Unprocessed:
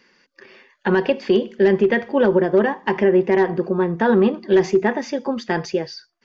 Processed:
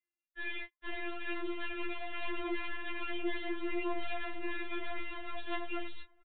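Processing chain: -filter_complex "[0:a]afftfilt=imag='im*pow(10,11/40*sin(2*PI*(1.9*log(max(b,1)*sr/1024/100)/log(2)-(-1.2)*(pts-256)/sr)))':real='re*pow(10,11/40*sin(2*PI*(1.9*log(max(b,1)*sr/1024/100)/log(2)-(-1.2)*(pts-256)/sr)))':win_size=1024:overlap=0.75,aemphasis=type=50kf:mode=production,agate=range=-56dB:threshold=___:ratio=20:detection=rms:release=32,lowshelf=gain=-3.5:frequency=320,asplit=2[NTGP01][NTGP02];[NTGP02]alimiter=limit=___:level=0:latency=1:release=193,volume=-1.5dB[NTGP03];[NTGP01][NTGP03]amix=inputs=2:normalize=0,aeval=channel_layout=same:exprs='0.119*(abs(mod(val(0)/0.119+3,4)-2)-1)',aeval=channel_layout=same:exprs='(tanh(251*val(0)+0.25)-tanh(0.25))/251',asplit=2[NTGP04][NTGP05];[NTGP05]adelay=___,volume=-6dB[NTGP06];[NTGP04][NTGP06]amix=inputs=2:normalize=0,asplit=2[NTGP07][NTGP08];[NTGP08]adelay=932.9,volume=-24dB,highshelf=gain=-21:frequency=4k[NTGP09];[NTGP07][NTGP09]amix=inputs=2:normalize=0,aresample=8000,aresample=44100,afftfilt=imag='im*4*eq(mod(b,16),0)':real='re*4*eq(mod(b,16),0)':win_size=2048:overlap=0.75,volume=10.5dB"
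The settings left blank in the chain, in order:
-49dB, -12dB, 17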